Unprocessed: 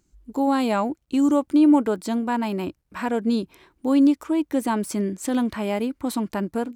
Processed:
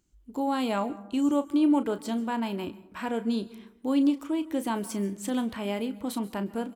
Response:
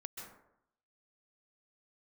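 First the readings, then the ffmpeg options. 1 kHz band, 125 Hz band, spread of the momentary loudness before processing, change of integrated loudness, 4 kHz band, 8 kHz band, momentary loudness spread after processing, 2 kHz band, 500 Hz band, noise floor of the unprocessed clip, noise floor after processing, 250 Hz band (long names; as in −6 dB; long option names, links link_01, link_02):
−6.0 dB, can't be measured, 10 LU, −6.0 dB, −2.5 dB, −5.0 dB, 9 LU, −5.5 dB, −6.0 dB, −69 dBFS, −58 dBFS, −6.0 dB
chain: -filter_complex "[0:a]equalizer=frequency=3100:width_type=o:width=0.37:gain=6,asplit=2[link_01][link_02];[link_02]adelay=35,volume=-12dB[link_03];[link_01][link_03]amix=inputs=2:normalize=0,asplit=2[link_04][link_05];[1:a]atrim=start_sample=2205,highshelf=frequency=7700:gain=11.5[link_06];[link_05][link_06]afir=irnorm=-1:irlink=0,volume=-11dB[link_07];[link_04][link_07]amix=inputs=2:normalize=0,volume=-7.5dB"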